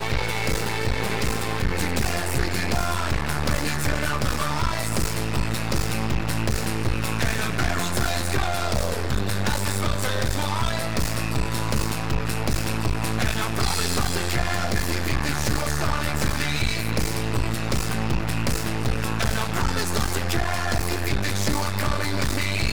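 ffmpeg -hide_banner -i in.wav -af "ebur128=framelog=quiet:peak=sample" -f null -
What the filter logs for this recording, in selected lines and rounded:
Integrated loudness:
  I:         -25.2 LUFS
  Threshold: -35.2 LUFS
Loudness range:
  LRA:         0.9 LU
  Threshold: -45.2 LUFS
  LRA low:   -25.5 LUFS
  LRA high:  -24.6 LUFS
Sample peak:
  Peak:      -10.2 dBFS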